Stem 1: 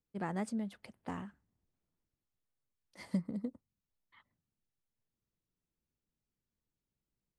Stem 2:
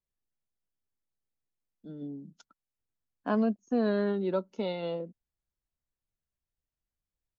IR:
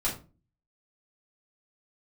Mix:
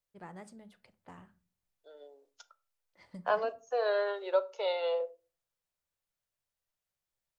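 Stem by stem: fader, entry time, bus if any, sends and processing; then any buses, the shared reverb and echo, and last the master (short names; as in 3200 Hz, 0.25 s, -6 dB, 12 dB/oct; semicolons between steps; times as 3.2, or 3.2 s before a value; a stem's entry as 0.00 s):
-9.5 dB, 0.00 s, send -17.5 dB, low-pass opened by the level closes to 2800 Hz, open at -38.5 dBFS; bell 240 Hz -8.5 dB 0.67 oct
+2.5 dB, 0.00 s, send -17.5 dB, steep high-pass 470 Hz 48 dB/oct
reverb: on, RT60 0.35 s, pre-delay 3 ms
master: dry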